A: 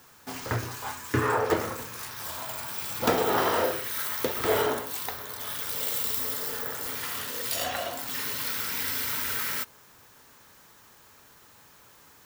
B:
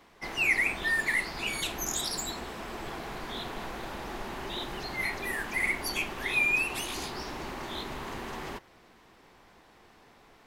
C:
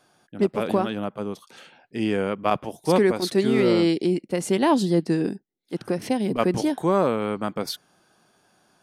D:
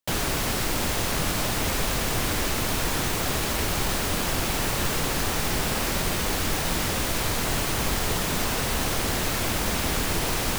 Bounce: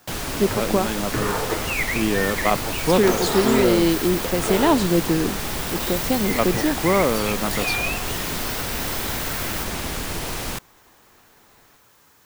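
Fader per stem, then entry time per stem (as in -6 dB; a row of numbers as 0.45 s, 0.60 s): -1.0 dB, -0.5 dB, +1.5 dB, -2.5 dB; 0.00 s, 1.30 s, 0.00 s, 0.00 s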